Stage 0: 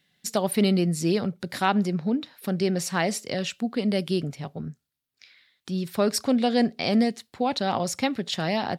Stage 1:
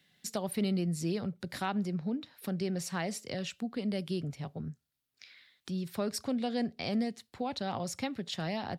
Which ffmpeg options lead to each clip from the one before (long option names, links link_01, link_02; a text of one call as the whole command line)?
ffmpeg -i in.wav -filter_complex "[0:a]acrossover=split=120[link_01][link_02];[link_02]acompressor=threshold=-51dB:ratio=1.5[link_03];[link_01][link_03]amix=inputs=2:normalize=0" out.wav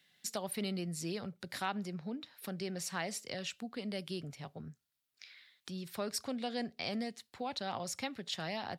ffmpeg -i in.wav -af "lowshelf=frequency=490:gain=-9" out.wav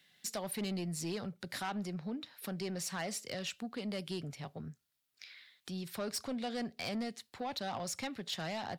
ffmpeg -i in.wav -af "asoftclip=type=tanh:threshold=-33.5dB,volume=2.5dB" out.wav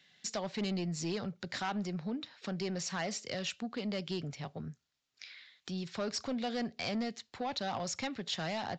ffmpeg -i in.wav -af "aresample=16000,aresample=44100,volume=2.5dB" out.wav